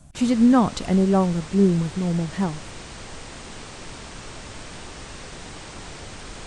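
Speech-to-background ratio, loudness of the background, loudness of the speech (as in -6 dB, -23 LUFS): 17.5 dB, -38.0 LUFS, -20.5 LUFS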